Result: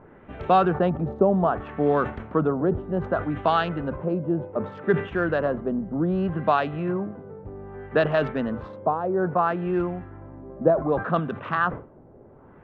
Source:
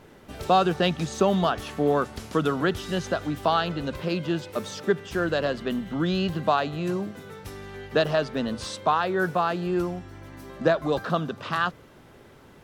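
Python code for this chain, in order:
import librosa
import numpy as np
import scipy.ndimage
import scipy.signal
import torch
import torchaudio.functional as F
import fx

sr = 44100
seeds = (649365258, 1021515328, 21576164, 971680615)

y = fx.wiener(x, sr, points=9)
y = fx.filter_lfo_lowpass(y, sr, shape='sine', hz=0.64, low_hz=620.0, high_hz=2500.0, q=1.1)
y = fx.sustainer(y, sr, db_per_s=130.0)
y = y * 10.0 ** (1.0 / 20.0)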